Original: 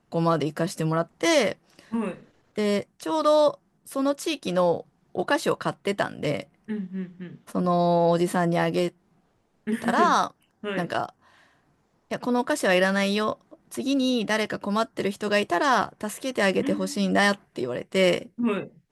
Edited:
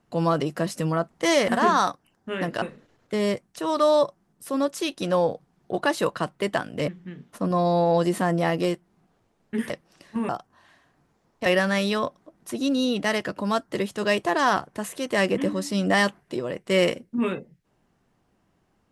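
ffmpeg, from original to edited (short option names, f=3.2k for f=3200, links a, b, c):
-filter_complex "[0:a]asplit=7[a][b][c][d][e][f][g];[a]atrim=end=1.482[h];[b]atrim=start=9.838:end=10.982[i];[c]atrim=start=2.068:end=6.332[j];[d]atrim=start=7.018:end=9.842[k];[e]atrim=start=1.478:end=2.072[l];[f]atrim=start=10.978:end=12.152[m];[g]atrim=start=12.708[n];[h][i]acrossfade=d=0.004:c1=hsin:c2=hsin[o];[o][j]acrossfade=d=0.004:c1=hsin:c2=hsin[p];[p][k]acrossfade=d=0.004:c1=hsin:c2=hsin[q];[q][l]acrossfade=d=0.004:c1=hsin:c2=hsin[r];[r][m]acrossfade=d=0.004:c1=hsin:c2=hsin[s];[s][n]acrossfade=d=0.004:c1=hsin:c2=hsin"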